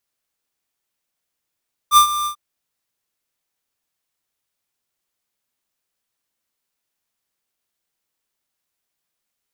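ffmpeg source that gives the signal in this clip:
-f lavfi -i "aevalsrc='0.398*(2*lt(mod(1190*t,1),0.5)-1)':d=0.443:s=44100,afade=t=in:d=0.059,afade=t=out:st=0.059:d=0.096:silence=0.2,afade=t=out:st=0.35:d=0.093"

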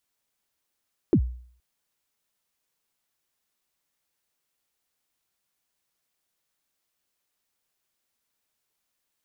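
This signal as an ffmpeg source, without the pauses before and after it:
-f lavfi -i "aevalsrc='0.237*pow(10,-3*t/0.54)*sin(2*PI*(410*0.076/log(61/410)*(exp(log(61/410)*min(t,0.076)/0.076)-1)+61*max(t-0.076,0)))':d=0.47:s=44100"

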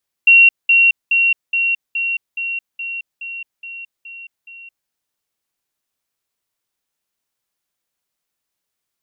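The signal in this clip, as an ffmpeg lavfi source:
-f lavfi -i "aevalsrc='pow(10,(-5-3*floor(t/0.42))/20)*sin(2*PI*2740*t)*clip(min(mod(t,0.42),0.22-mod(t,0.42))/0.005,0,1)':d=4.62:s=44100"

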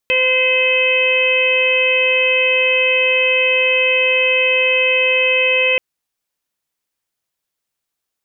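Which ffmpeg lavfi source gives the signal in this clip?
-f lavfi -i "aevalsrc='0.126*sin(2*PI*514*t)+0.0266*sin(2*PI*1028*t)+0.0188*sin(2*PI*1542*t)+0.0891*sin(2*PI*2056*t)+0.2*sin(2*PI*2570*t)+0.075*sin(2*PI*3084*t)':d=5.68:s=44100"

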